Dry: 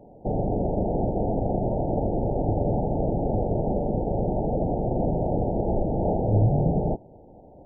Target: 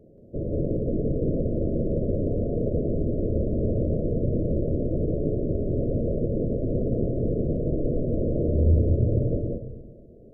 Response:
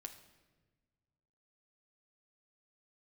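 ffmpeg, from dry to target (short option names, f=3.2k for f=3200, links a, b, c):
-filter_complex "[0:a]asplit=2[a][b];[1:a]atrim=start_sample=2205,afade=t=out:st=0.43:d=0.01,atrim=end_sample=19404,adelay=133[c];[b][c]afir=irnorm=-1:irlink=0,volume=5dB[d];[a][d]amix=inputs=2:normalize=0,asetrate=32667,aresample=44100,volume=-3.5dB"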